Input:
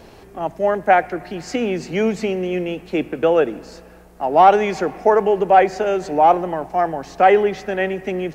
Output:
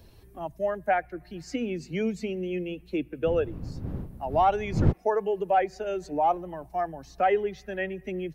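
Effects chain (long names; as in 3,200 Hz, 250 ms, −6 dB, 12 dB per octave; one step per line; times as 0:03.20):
spectral dynamics exaggerated over time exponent 1.5
0:03.25–0:04.91: wind on the microphone 120 Hz −19 dBFS
multiband upward and downward compressor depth 40%
level −8 dB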